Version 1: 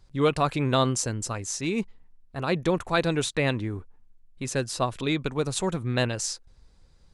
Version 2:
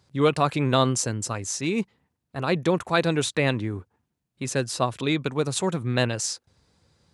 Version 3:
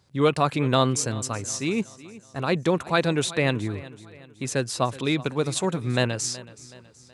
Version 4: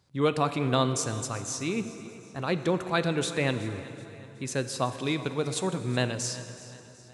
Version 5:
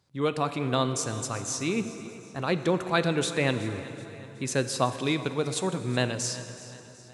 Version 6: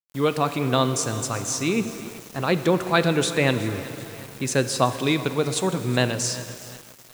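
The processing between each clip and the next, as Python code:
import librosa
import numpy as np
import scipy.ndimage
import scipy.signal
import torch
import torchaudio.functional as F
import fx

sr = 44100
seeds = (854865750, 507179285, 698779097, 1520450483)

y1 = scipy.signal.sosfilt(scipy.signal.butter(4, 85.0, 'highpass', fs=sr, output='sos'), x)
y1 = y1 * 10.0 ** (2.0 / 20.0)
y2 = fx.echo_feedback(y1, sr, ms=374, feedback_pct=46, wet_db=-18.5)
y3 = fx.rev_plate(y2, sr, seeds[0], rt60_s=3.3, hf_ratio=0.75, predelay_ms=0, drr_db=10.0)
y3 = y3 * 10.0 ** (-4.5 / 20.0)
y4 = fx.low_shelf(y3, sr, hz=61.0, db=-6.5)
y4 = fx.rider(y4, sr, range_db=10, speed_s=2.0)
y5 = fx.dmg_noise_colour(y4, sr, seeds[1], colour='white', level_db=-54.0)
y5 = np.where(np.abs(y5) >= 10.0 ** (-42.5 / 20.0), y5, 0.0)
y5 = y5 * 10.0 ** (5.0 / 20.0)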